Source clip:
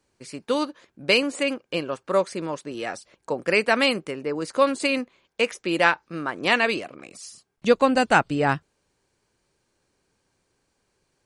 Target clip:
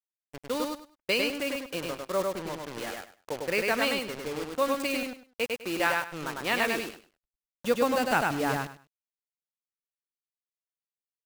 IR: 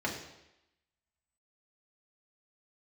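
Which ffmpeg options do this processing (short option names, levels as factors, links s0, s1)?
-filter_complex "[0:a]acrusher=bits=4:mix=0:aa=0.000001,anlmdn=10,asplit=2[s0][s1];[s1]aecho=0:1:101|202|303:0.708|0.142|0.0283[s2];[s0][s2]amix=inputs=2:normalize=0,volume=0.398"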